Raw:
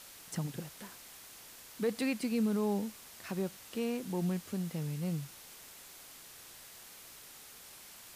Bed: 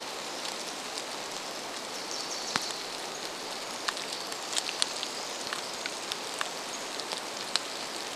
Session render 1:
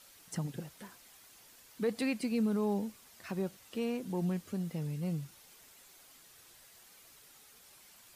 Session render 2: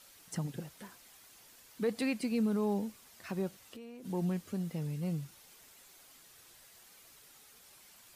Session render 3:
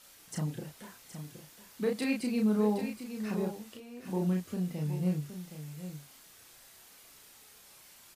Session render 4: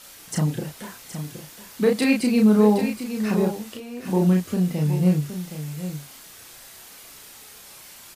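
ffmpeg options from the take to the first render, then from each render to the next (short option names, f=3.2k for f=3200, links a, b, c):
-af "afftdn=nr=8:nf=-53"
-filter_complex "[0:a]asettb=1/sr,asplit=3[a][b][c];[a]atrim=end=3.614[d];[b]atrim=start=3.61:end=4.05,asetpts=PTS-STARTPTS,afade=t=in:d=0.004:c=qsin,afade=t=out:st=0.436:d=0.004:c=qsin,acompressor=threshold=-45dB:ratio=8:attack=3.2:release=140:knee=1:detection=peak[e];[c]atrim=start=4.046[f];[d][e]acrossfade=d=0.004:c1=hsin:c2=qsin[g];[g][f]acrossfade=d=0.004:c1=qsin:c2=hsin"
-filter_complex "[0:a]asplit=2[a][b];[b]adelay=33,volume=-2.5dB[c];[a][c]amix=inputs=2:normalize=0,aecho=1:1:769:0.316"
-af "volume=11.5dB"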